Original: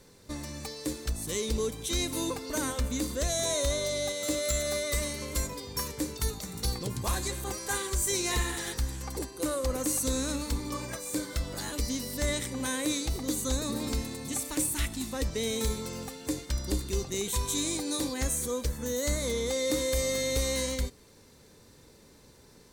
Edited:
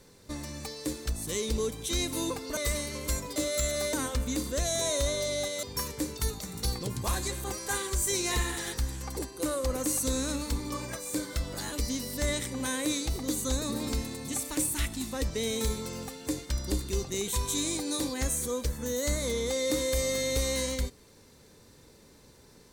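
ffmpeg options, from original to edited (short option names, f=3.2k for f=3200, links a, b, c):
-filter_complex "[0:a]asplit=5[a][b][c][d][e];[a]atrim=end=2.572[f];[b]atrim=start=4.838:end=5.632[g];[c]atrim=start=4.268:end=4.842[h];[d]atrim=start=2.568:end=4.272[i];[e]atrim=start=5.628[j];[f][g]acrossfade=d=0.004:c1=hsin:c2=hsin[k];[k][h]acrossfade=d=0.004:c1=hsin:c2=hsin[l];[l][i]acrossfade=d=0.004:c1=hsin:c2=hsin[m];[m][j]acrossfade=d=0.004:c1=hsin:c2=hsin"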